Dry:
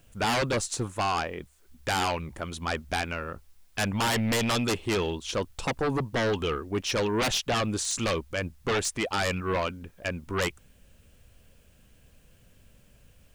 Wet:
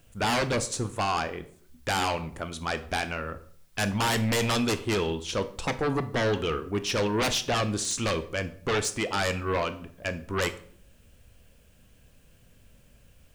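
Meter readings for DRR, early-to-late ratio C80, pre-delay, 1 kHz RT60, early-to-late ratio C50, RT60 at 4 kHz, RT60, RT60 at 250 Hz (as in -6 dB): 10.5 dB, 18.5 dB, 18 ms, 0.50 s, 15.0 dB, 0.40 s, 0.55 s, 0.75 s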